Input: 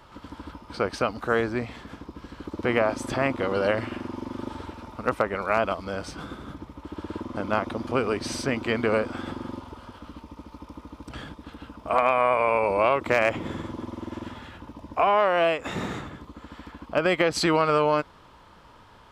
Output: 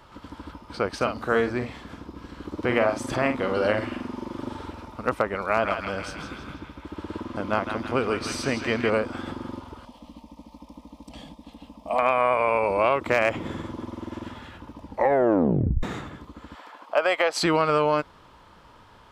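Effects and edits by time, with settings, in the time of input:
0.96–4.85 doubler 48 ms -7.5 dB
5.4–8.9 narrowing echo 0.161 s, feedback 66%, band-pass 2400 Hz, level -3.5 dB
9.85–11.99 fixed phaser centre 390 Hz, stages 6
14.83 tape stop 1.00 s
16.55–17.43 resonant high-pass 670 Hz, resonance Q 1.7

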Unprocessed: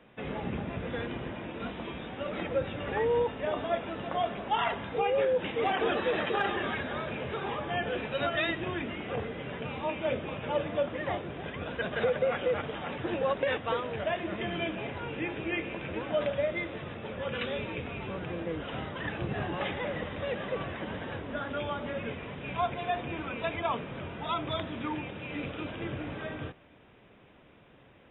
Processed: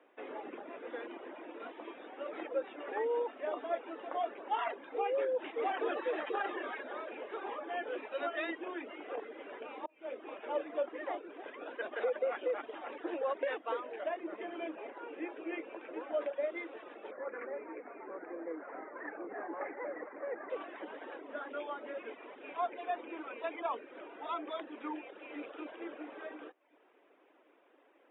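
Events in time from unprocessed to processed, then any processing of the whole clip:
9.86–10.36 fade in
14.08–16.41 LPF 2100 Hz -> 2800 Hz 6 dB/oct
17.11–20.5 steep low-pass 2200 Hz 72 dB/oct
whole clip: elliptic high-pass 300 Hz, stop band 70 dB; reverb removal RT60 0.55 s; Bessel low-pass 2000 Hz, order 2; gain -4 dB

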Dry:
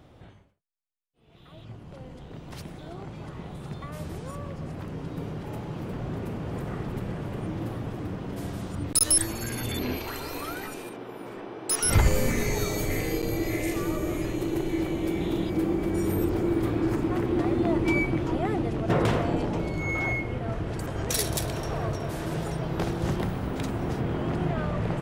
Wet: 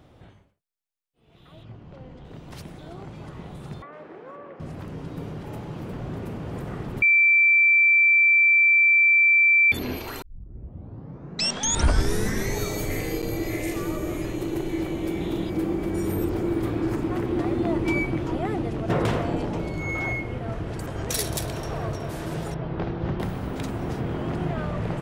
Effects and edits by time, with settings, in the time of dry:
1.63–2.25 air absorption 120 m
3.82–4.6 Chebyshev band-pass 370–1900 Hz
7.02–9.72 bleep 2340 Hz -14 dBFS
10.22 tape start 2.37 s
22.54–23.2 air absorption 290 m

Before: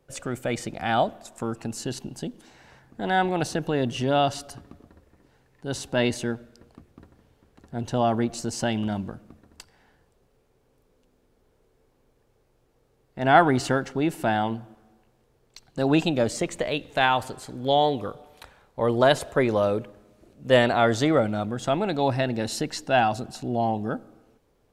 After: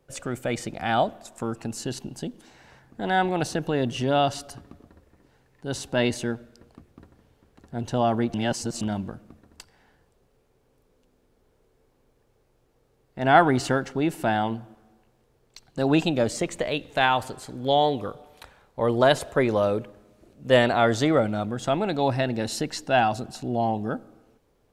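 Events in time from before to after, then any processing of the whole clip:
8.34–8.81 reverse

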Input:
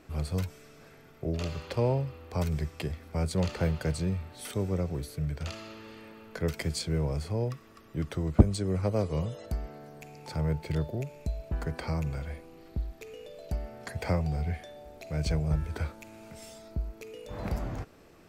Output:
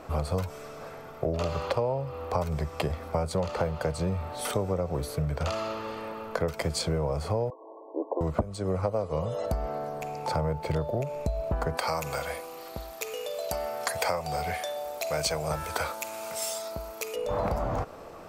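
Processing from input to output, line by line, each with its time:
7.5–8.21 brick-wall FIR band-pass 270–1100 Hz
11.77–17.16 tilt +4 dB/oct
whole clip: band shelf 790 Hz +10 dB; compressor 10:1, threshold -31 dBFS; gain +6.5 dB

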